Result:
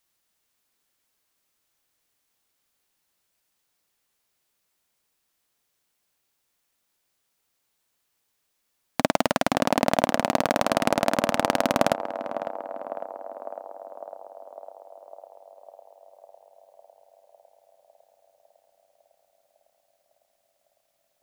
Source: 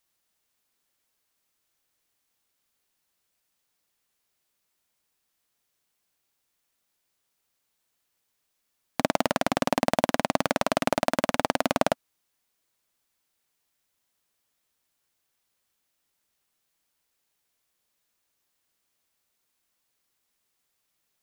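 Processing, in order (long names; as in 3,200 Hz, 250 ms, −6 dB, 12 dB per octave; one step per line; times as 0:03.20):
feedback echo with a band-pass in the loop 553 ms, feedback 74%, band-pass 640 Hz, level −9 dB
level +2 dB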